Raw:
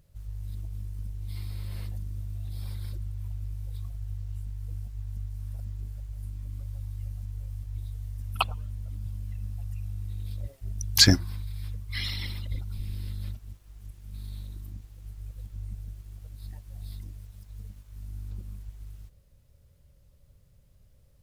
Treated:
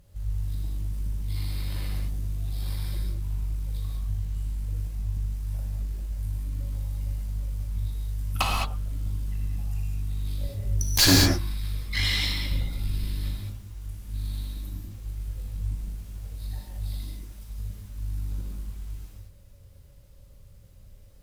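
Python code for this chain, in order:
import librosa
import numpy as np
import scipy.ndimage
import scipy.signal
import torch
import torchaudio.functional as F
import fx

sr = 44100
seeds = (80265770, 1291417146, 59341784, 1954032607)

y = fx.tube_stage(x, sr, drive_db=24.0, bias=0.65)
y = fx.rev_gated(y, sr, seeds[0], gate_ms=240, shape='flat', drr_db=-3.0)
y = y * 10.0 ** (7.0 / 20.0)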